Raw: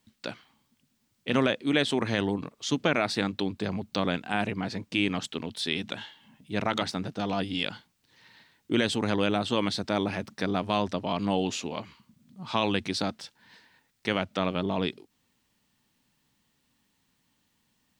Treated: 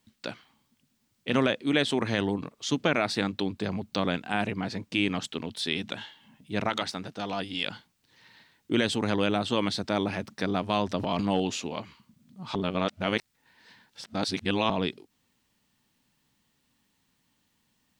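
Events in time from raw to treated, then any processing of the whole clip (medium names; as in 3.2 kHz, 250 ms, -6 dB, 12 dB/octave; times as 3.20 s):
6.69–7.67 s: bass shelf 420 Hz -7 dB
10.88–11.40 s: transient shaper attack +1 dB, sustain +10 dB
12.55–14.70 s: reverse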